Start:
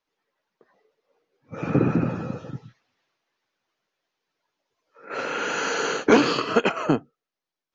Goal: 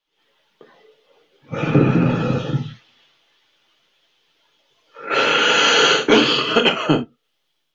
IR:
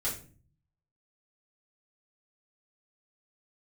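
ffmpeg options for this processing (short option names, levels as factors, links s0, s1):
-filter_complex "[0:a]equalizer=f=3200:w=2.2:g=13.5,dynaudnorm=f=110:g=3:m=5.01,asplit=2[s0][s1];[1:a]atrim=start_sample=2205,atrim=end_sample=3528[s2];[s1][s2]afir=irnorm=-1:irlink=0,volume=0.501[s3];[s0][s3]amix=inputs=2:normalize=0,volume=0.562"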